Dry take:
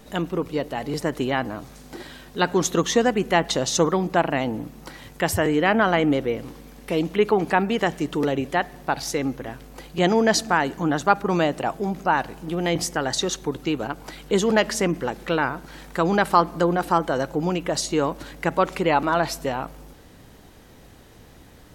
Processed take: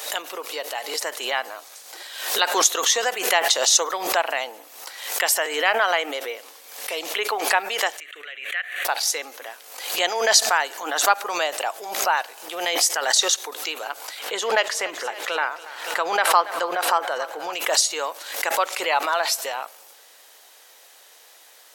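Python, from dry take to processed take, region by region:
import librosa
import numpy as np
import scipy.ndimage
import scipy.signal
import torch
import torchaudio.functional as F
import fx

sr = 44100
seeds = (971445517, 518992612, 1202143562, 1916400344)

y = fx.chain(x, sr, fx.bandpass_q(hz=2000.0, q=1.5),
    fx.fixed_phaser(hz=2200.0, stages=4), at=(8.0, 8.85))
y = fx.chain(y, sr, fx.bass_treble(bass_db=2, treble_db=-9),
    fx.echo_thinned(ms=282, feedback_pct=58, hz=200.0, wet_db=-16.0), at=(14.19, 17.53))
y = scipy.signal.sosfilt(scipy.signal.butter(4, 540.0, 'highpass', fs=sr, output='sos'), y)
y = fx.high_shelf(y, sr, hz=2400.0, db=12.0)
y = fx.pre_swell(y, sr, db_per_s=69.0)
y = y * librosa.db_to_amplitude(-2.5)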